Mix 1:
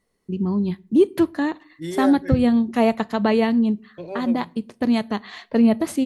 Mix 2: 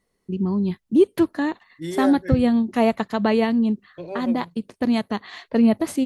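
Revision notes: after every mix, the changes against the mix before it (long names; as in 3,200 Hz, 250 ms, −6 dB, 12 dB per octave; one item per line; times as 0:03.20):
reverb: off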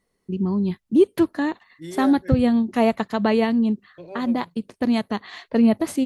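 second voice −5.5 dB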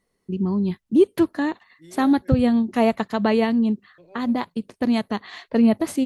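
second voice −11.0 dB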